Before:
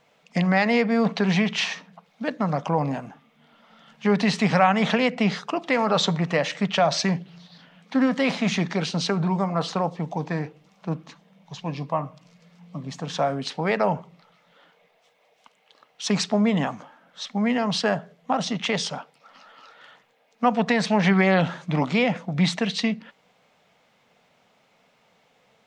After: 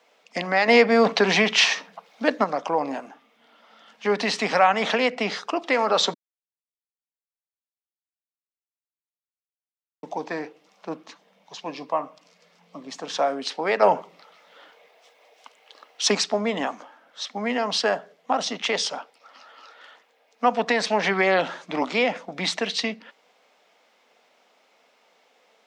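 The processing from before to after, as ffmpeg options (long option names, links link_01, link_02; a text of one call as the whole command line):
ffmpeg -i in.wav -filter_complex "[0:a]asettb=1/sr,asplit=3[link_01][link_02][link_03];[link_01]atrim=end=13.824[link_04];[link_02]atrim=start=13.82:end=16.15,asetpts=PTS-STARTPTS,afade=type=in:duration=0.004:curve=qsin,afade=type=out:start_time=2.326:duration=0.004:curve=qsin,acontrast=34[link_05];[link_03]atrim=start=16.146[link_06];[link_04][link_05]acrossfade=duration=0.004:curve1=hsin:curve2=qsin[link_07];[link_07][link_06]acrossfade=duration=0.004:curve1=qsin:curve2=hsin,asplit=5[link_08][link_09][link_10][link_11][link_12];[link_08]atrim=end=0.682[link_13];[link_09]atrim=start=0.678:end=2.442,asetpts=PTS-STARTPTS,volume=6dB[link_14];[link_10]atrim=start=2.438:end=6.14,asetpts=PTS-STARTPTS,afade=type=out:start_time=3.698:duration=0.004:curve=hsin[link_15];[link_11]atrim=start=6.14:end=10.03,asetpts=PTS-STARTPTS,volume=0[link_16];[link_12]atrim=start=10.03,asetpts=PTS-STARTPTS,afade=type=in:duration=0.004:curve=hsin[link_17];[link_13][link_14]acrossfade=duration=0.004:curve1=hsin:curve2=hsin[link_18];[link_15][link_16][link_17]concat=n=3:v=0:a=1[link_19];[link_18][link_19]acrossfade=duration=0.004:curve1=hsin:curve2=hsin,highpass=frequency=280:width=0.5412,highpass=frequency=280:width=1.3066,equalizer=frequency=5200:width=2.9:gain=3,volume=1dB" out.wav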